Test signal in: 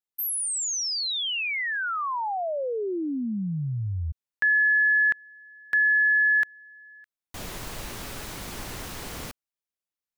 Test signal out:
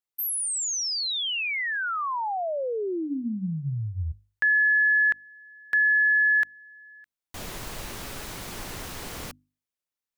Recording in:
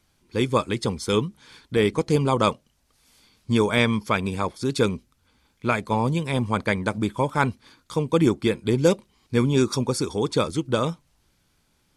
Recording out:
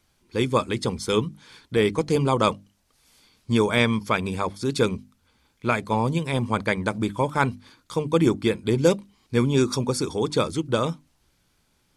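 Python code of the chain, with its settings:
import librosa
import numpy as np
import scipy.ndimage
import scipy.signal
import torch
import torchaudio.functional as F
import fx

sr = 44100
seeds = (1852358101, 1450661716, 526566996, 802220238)

y = fx.hum_notches(x, sr, base_hz=50, count=6)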